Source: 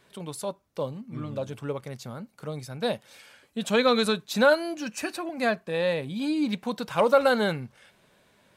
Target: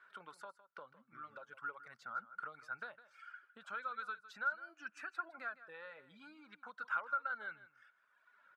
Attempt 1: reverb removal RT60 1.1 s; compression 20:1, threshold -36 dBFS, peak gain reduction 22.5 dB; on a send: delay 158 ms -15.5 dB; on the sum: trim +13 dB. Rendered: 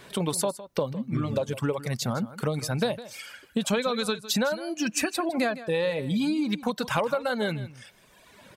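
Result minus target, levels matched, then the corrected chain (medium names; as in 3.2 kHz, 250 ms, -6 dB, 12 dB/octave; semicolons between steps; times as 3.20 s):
1 kHz band -6.5 dB
reverb removal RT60 1.1 s; compression 20:1, threshold -36 dBFS, peak gain reduction 22.5 dB; band-pass filter 1.4 kHz, Q 12; on a send: delay 158 ms -15.5 dB; on the sum: trim +13 dB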